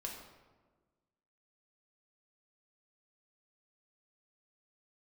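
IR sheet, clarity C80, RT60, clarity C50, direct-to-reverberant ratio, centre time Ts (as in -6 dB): 6.0 dB, 1.4 s, 4.0 dB, -1.0 dB, 44 ms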